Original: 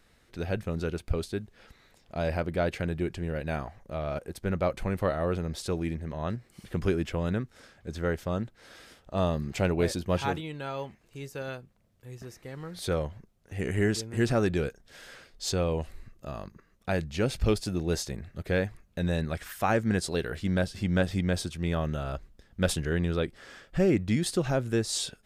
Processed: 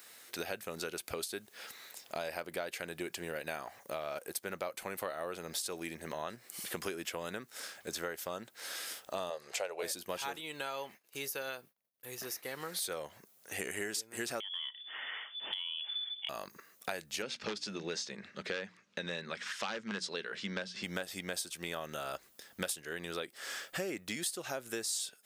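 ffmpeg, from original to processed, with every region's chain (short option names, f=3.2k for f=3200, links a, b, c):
-filter_complex "[0:a]asettb=1/sr,asplit=3[a][b][c];[a]atrim=end=9.304[d];[b]atrim=start=9.3:end=9.83,asetpts=PTS-STARTPTS,afade=t=in:d=0.004:c=qsin,afade=t=out:st=0.526:d=0.004:c=qsin,lowpass=8.7k,lowshelf=f=360:t=q:w=3:g=-11.5[e];[c]atrim=start=9.826[f];[d][e]acrossfade=d=0.004:c1=hsin:c2=qsin[g];[g][f]acrossfade=d=0.004:c1=qsin:c2=hsin,asettb=1/sr,asplit=3[h][i][j];[h]atrim=end=10.794[k];[i]atrim=start=10.79:end=12.62,asetpts=PTS-STARTPTS,afade=t=in:d=0.004:c=qsin,afade=t=out:st=1.826:d=0.004:c=qsin,agate=range=-33dB:threshold=-55dB:ratio=3:release=100:detection=peak,equalizer=f=7.7k:w=3.2:g=-7[l];[j]atrim=start=12.616[m];[k][l]acrossfade=d=0.004:c1=hsin:c2=qsin[n];[n][m]acrossfade=d=0.004:c1=qsin:c2=hsin,asettb=1/sr,asplit=3[o][p][q];[o]atrim=end=14.404[r];[p]atrim=start=14.4:end=16.29,asetpts=PTS-STARTPTS,afade=t=in:d=0.004:c=qsin,afade=t=out:st=1.886:d=0.004:c=qsin,lowpass=f=3k:t=q:w=0.5098,lowpass=f=3k:t=q:w=0.6013,lowpass=f=3k:t=q:w=0.9,lowpass=f=3k:t=q:w=2.563,afreqshift=-3500,acompressor=threshold=-36dB:ratio=8:attack=3.2:release=140:knee=1:detection=peak[s];[q]atrim=start=16.286[t];[r][s]acrossfade=d=0.004:c1=hsin:c2=qsin[u];[u][t]acrossfade=d=0.004:c1=qsin:c2=hsin,asettb=1/sr,asplit=3[v][w][x];[v]atrim=end=17.224[y];[w]atrim=start=17.22:end=20.84,asetpts=PTS-STARTPTS,afade=t=in:d=0.004:c=qsin,afade=t=out:st=3.616:d=0.004:c=qsin,bandreject=f=60:t=h:w=6,bandreject=f=120:t=h:w=6,bandreject=f=180:t=h:w=6,bandreject=f=240:t=h:w=6,bandreject=f=300:t=h:w=6,aeval=exprs='0.112*(abs(mod(val(0)/0.112+3,4)-2)-1)':c=same,highpass=130,equalizer=f=200:t=q:w=4:g=8,equalizer=f=300:t=q:w=4:g=-5,equalizer=f=710:t=q:w=4:g=-9,equalizer=f=4.5k:t=q:w=4:g=-3,lowpass=f=5.4k:w=0.5412,lowpass=f=5.4k:w=1.3066[z];[x]atrim=start=20.836[aa];[y][z]acrossfade=d=0.004:c1=hsin:c2=qsin[ab];[ab][aa]acrossfade=d=0.004:c1=qsin:c2=hsin,highpass=f=520:p=1,aemphasis=mode=production:type=bsi,acompressor=threshold=-43dB:ratio=6,volume=7dB"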